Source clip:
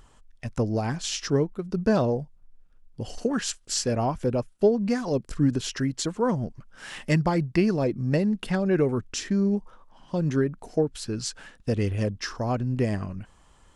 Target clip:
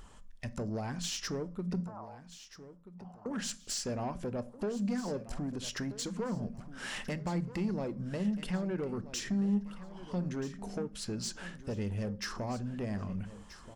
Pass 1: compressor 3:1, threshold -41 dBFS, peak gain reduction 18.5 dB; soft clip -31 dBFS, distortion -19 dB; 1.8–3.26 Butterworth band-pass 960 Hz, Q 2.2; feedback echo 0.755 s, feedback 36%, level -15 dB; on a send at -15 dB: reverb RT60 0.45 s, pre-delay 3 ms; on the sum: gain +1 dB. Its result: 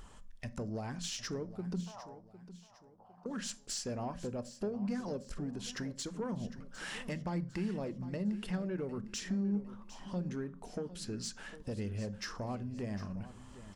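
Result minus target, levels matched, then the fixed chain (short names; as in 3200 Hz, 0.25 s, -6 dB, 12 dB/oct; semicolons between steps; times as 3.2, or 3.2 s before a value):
echo 0.526 s early; compressor: peak gain reduction +4 dB
compressor 3:1, threshold -35 dBFS, peak gain reduction 14.5 dB; soft clip -31 dBFS, distortion -14 dB; 1.8–3.26 Butterworth band-pass 960 Hz, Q 2.2; feedback echo 1.281 s, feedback 36%, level -15 dB; on a send at -15 dB: reverb RT60 0.45 s, pre-delay 3 ms; on the sum: gain +1 dB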